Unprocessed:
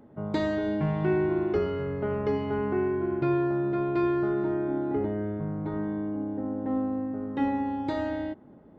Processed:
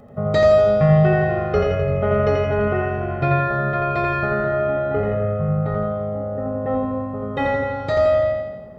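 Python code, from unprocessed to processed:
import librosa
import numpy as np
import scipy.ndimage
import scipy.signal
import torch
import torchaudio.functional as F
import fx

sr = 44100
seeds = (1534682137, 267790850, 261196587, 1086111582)

p1 = x + 0.91 * np.pad(x, (int(1.6 * sr / 1000.0), 0))[:len(x)]
p2 = p1 + fx.echo_feedback(p1, sr, ms=85, feedback_pct=56, wet_db=-3.5, dry=0)
y = p2 * 10.0 ** (8.0 / 20.0)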